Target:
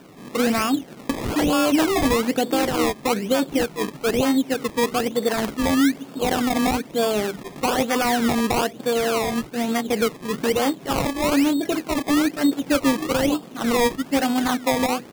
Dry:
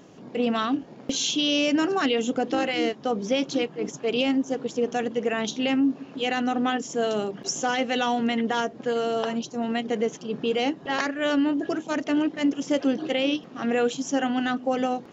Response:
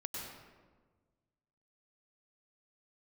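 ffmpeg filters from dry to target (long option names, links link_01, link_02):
-af "aresample=8000,aresample=44100,acrusher=samples=21:mix=1:aa=0.000001:lfo=1:lforange=21:lforate=1.1,volume=4dB"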